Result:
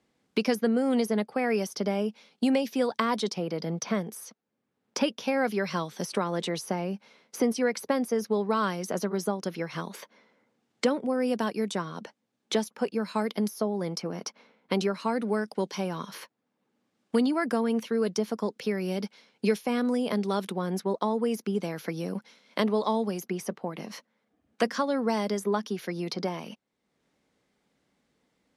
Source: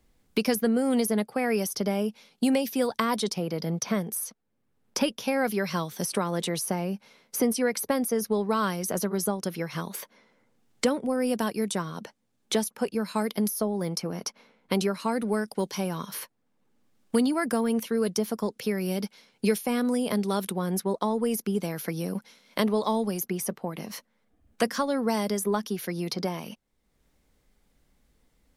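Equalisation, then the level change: high-pass 170 Hz; dynamic bell 9 kHz, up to -5 dB, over -55 dBFS, Q 6.1; distance through air 60 m; 0.0 dB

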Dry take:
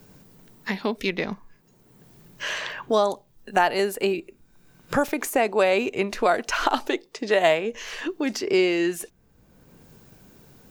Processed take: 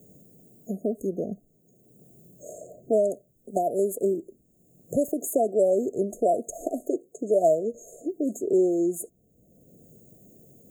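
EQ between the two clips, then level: high-pass 130 Hz 6 dB/octave; brick-wall FIR band-stop 730–6400 Hz; 0.0 dB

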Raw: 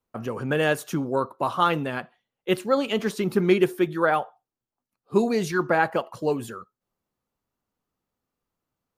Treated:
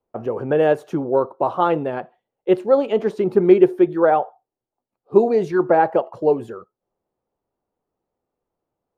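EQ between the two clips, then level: low-pass 1.4 kHz 6 dB/octave; high-order bell 540 Hz +8.5 dB; 0.0 dB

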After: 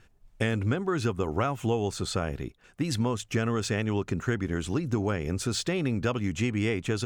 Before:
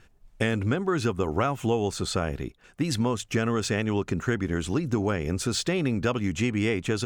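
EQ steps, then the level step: peaking EQ 110 Hz +3 dB 0.43 oct; -2.5 dB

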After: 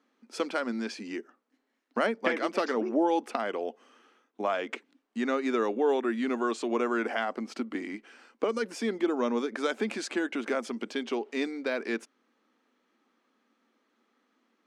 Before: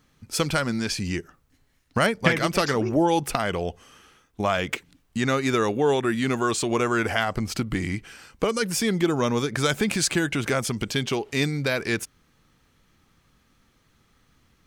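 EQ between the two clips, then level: elliptic high-pass 230 Hz, stop band 40 dB; Bessel low-pass 6.4 kHz, order 2; treble shelf 2.4 kHz -9 dB; -3.5 dB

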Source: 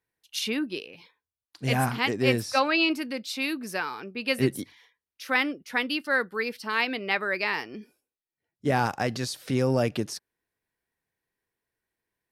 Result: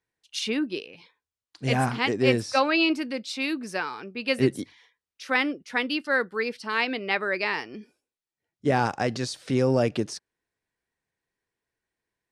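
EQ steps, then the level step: low-pass 9.3 kHz 24 dB/octave; dynamic bell 400 Hz, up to +3 dB, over -34 dBFS, Q 0.9; 0.0 dB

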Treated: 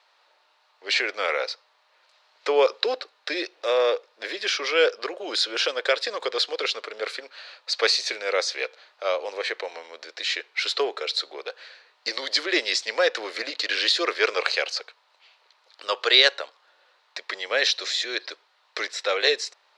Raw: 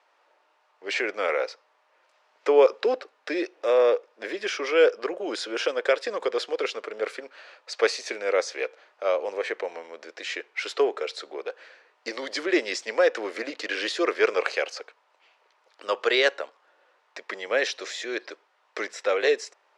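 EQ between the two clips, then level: high-pass 710 Hz 6 dB/octave; peaking EQ 4.1 kHz +11.5 dB 0.61 oct; +2.5 dB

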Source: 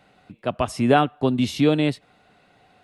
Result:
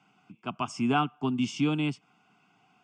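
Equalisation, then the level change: high-pass 140 Hz 24 dB/octave; low-pass 8.9 kHz 24 dB/octave; static phaser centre 2.7 kHz, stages 8; -3.5 dB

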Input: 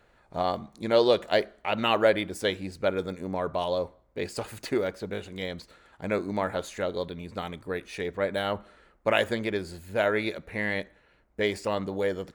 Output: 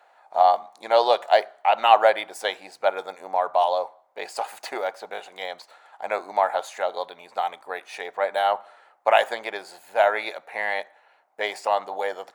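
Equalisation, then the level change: resonant high-pass 770 Hz, resonance Q 4.9; +1.5 dB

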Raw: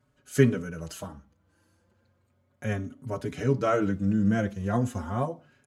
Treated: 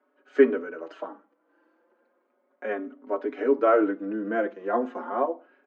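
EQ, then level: steep high-pass 280 Hz 48 dB/octave; low-pass 1.7 kHz 12 dB/octave; distance through air 110 m; +6.0 dB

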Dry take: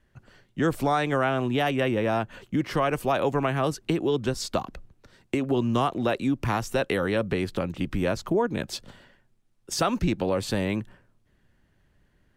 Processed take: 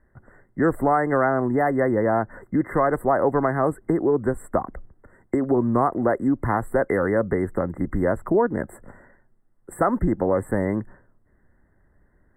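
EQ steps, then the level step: brick-wall FIR band-stop 2.1–7.5 kHz; peaking EQ 140 Hz -5.5 dB 1.1 oct; treble shelf 3 kHz -12 dB; +5.5 dB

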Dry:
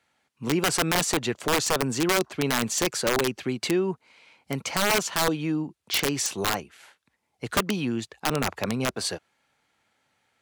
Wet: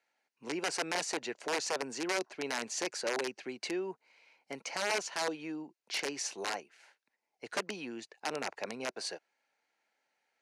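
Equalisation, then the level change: cabinet simulation 410–8800 Hz, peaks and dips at 1.2 kHz -8 dB, 3.4 kHz -8 dB, 7.8 kHz -7 dB; -7.0 dB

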